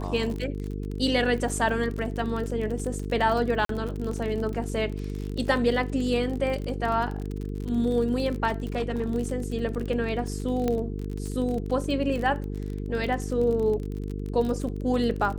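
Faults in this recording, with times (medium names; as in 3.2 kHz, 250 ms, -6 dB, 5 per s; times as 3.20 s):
buzz 50 Hz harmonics 9 -32 dBFS
crackle 37 per s -31 dBFS
3.65–3.69 s: dropout 43 ms
8.47–9.10 s: clipped -22 dBFS
10.68 s: pop -14 dBFS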